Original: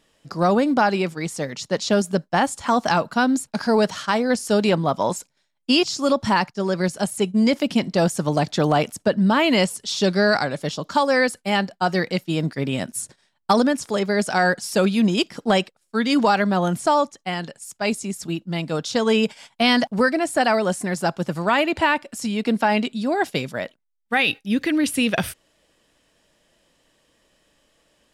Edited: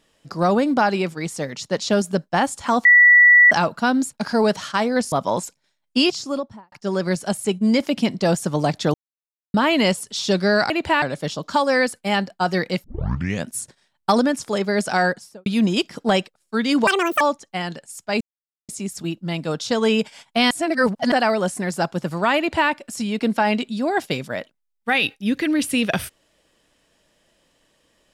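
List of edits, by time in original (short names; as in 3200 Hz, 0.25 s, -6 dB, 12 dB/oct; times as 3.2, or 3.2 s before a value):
2.85 add tone 1950 Hz -7.5 dBFS 0.66 s
4.46–4.85 cut
5.76–6.45 studio fade out
8.67–9.27 mute
12.25 tape start 0.62 s
14.41–14.87 studio fade out
16.28–16.93 speed 193%
17.93 insert silence 0.48 s
19.75–20.36 reverse
21.62–21.94 copy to 10.43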